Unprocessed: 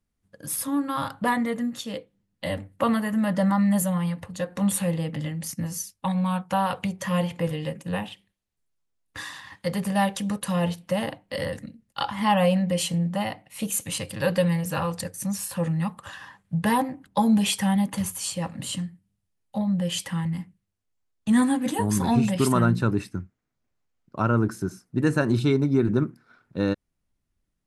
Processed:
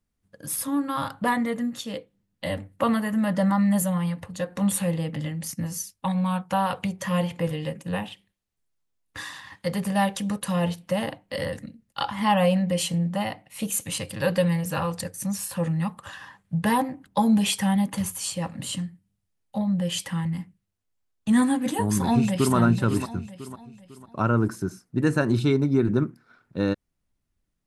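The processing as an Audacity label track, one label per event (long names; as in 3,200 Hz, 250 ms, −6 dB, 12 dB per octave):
21.980000	22.550000	delay throw 500 ms, feedback 40%, level −9 dB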